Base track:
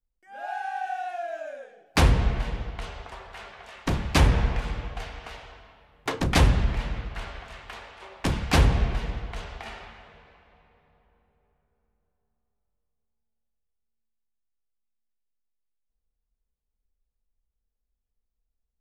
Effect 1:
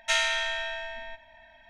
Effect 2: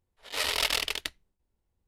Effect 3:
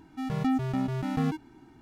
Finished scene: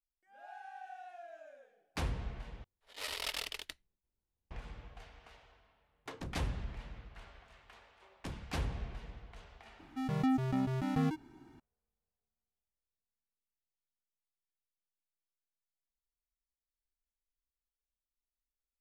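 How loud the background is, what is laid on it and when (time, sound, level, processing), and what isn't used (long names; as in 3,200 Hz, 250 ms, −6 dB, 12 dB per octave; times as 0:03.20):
base track −17.5 dB
0:02.64: overwrite with 2 −11.5 dB
0:09.79: mix in 3 −4 dB
not used: 1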